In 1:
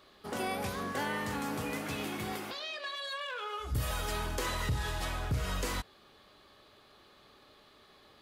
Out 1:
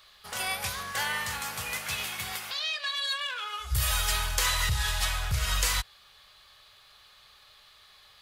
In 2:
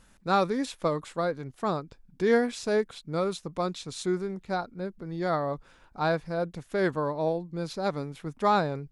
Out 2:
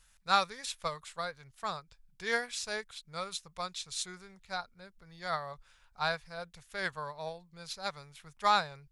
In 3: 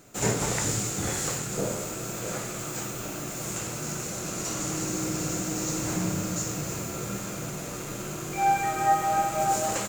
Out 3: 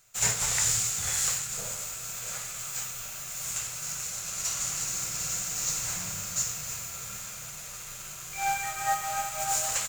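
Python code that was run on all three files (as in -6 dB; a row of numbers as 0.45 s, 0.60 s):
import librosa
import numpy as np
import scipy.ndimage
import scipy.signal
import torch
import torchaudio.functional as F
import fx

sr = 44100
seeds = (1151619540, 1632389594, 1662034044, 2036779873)

y = fx.tone_stack(x, sr, knobs='10-0-10')
y = fx.upward_expand(y, sr, threshold_db=-48.0, expansion=1.5)
y = y * 10.0 ** (-12 / 20.0) / np.max(np.abs(y))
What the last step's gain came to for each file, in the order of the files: +14.5 dB, +8.0 dB, +6.5 dB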